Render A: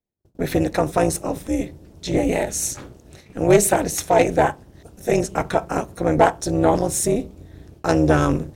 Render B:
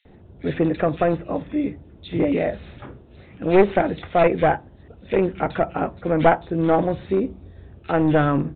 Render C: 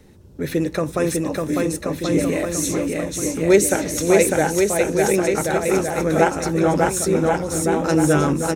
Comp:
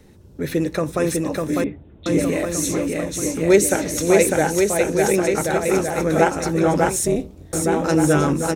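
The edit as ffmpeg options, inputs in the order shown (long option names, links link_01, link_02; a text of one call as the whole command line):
ffmpeg -i take0.wav -i take1.wav -i take2.wav -filter_complex "[2:a]asplit=3[link_01][link_02][link_03];[link_01]atrim=end=1.642[link_04];[1:a]atrim=start=1.638:end=2.062[link_05];[link_02]atrim=start=2.058:end=6.962[link_06];[0:a]atrim=start=6.958:end=7.532[link_07];[link_03]atrim=start=7.528[link_08];[link_04][link_05]acrossfade=duration=0.004:curve1=hsin:curve2=hsin[link_09];[link_09][link_06]acrossfade=duration=0.004:curve1=hsin:curve2=hsin[link_10];[link_10][link_07]acrossfade=duration=0.004:curve1=hsin:curve2=hsin[link_11];[link_11][link_08]acrossfade=duration=0.004:curve1=hsin:curve2=hsin" out.wav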